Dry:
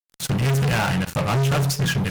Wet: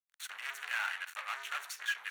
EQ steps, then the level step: ladder high-pass 1300 Hz, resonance 35%; high shelf 2400 Hz -9.5 dB; notch 5000 Hz, Q 5.7; 0.0 dB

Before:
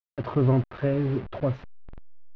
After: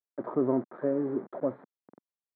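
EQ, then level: running mean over 16 samples; HPF 230 Hz 24 dB/oct; air absorption 470 m; 0.0 dB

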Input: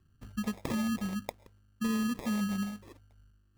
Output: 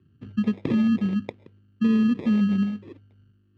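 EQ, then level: HPF 95 Hz 24 dB/oct; synth low-pass 3000 Hz, resonance Q 1.6; resonant low shelf 520 Hz +9.5 dB, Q 1.5; 0.0 dB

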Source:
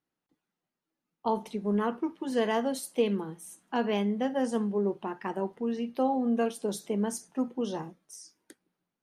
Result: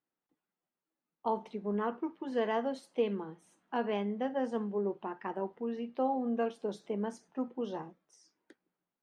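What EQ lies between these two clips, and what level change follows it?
tape spacing loss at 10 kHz 25 dB; low shelf 260 Hz -10.5 dB; 0.0 dB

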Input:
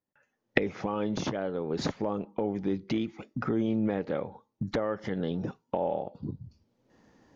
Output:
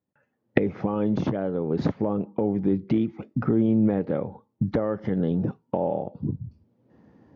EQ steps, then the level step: HPF 97 Hz; air absorption 110 m; tilt -3 dB/oct; +1.5 dB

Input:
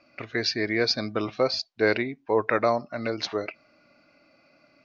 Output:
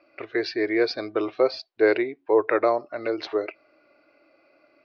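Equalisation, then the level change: LPF 5000 Hz 12 dB/oct; air absorption 130 m; resonant low shelf 270 Hz -9 dB, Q 3; 0.0 dB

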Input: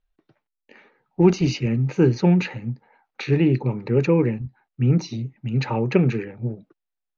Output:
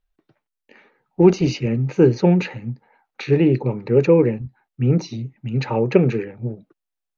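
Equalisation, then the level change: dynamic EQ 500 Hz, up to +7 dB, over -33 dBFS, Q 1.3; 0.0 dB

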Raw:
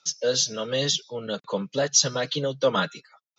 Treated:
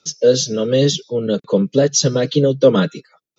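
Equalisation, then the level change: resonant low shelf 580 Hz +11 dB, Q 1.5; +2.5 dB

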